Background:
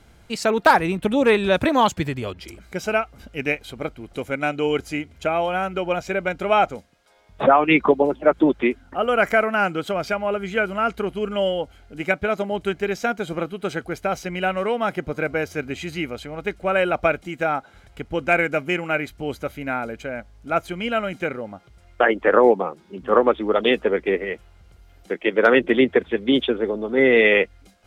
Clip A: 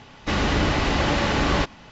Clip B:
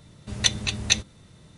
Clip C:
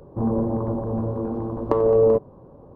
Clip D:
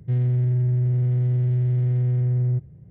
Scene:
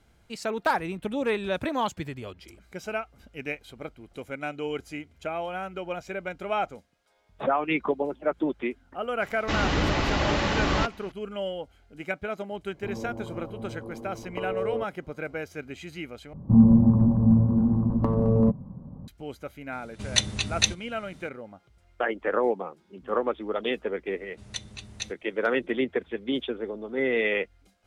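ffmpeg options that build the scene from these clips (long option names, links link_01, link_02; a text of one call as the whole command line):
ffmpeg -i bed.wav -i cue0.wav -i cue1.wav -i cue2.wav -filter_complex "[3:a]asplit=2[link_01][link_02];[2:a]asplit=2[link_03][link_04];[0:a]volume=-10dB[link_05];[link_02]lowshelf=frequency=280:width_type=q:width=3:gain=10.5[link_06];[link_05]asplit=2[link_07][link_08];[link_07]atrim=end=16.334[link_09];[link_06]atrim=end=2.75,asetpts=PTS-STARTPTS,volume=-5.5dB[link_10];[link_08]atrim=start=19.076[link_11];[1:a]atrim=end=1.91,asetpts=PTS-STARTPTS,volume=-3.5dB,afade=type=in:duration=0.004:curve=hsin,afade=type=out:start_time=1.906:duration=0.004:curve=hsin,adelay=9210[link_12];[link_01]atrim=end=2.75,asetpts=PTS-STARTPTS,volume=-13.5dB,afade=type=in:duration=0.004:curve=hsin,afade=type=out:start_time=2.746:duration=0.004:curve=hsin,adelay=12660[link_13];[link_03]atrim=end=1.57,asetpts=PTS-STARTPTS,volume=-1.5dB,afade=type=in:duration=0.004:curve=hsin,afade=type=out:start_time=1.566:duration=0.004:curve=hsin,adelay=869652S[link_14];[link_04]atrim=end=1.57,asetpts=PTS-STARTPTS,volume=-14.5dB,afade=type=in:duration=0.004:curve=hsin,afade=type=out:start_time=1.566:duration=0.004:curve=hsin,adelay=24100[link_15];[link_09][link_10]acrossfade=duration=0.004:curve1=hsin:curve2=hsin[link_16];[link_16][link_11]acrossfade=duration=0.004:curve1=hsin:curve2=hsin[link_17];[link_17][link_12][link_13][link_14][link_15]amix=inputs=5:normalize=0" out.wav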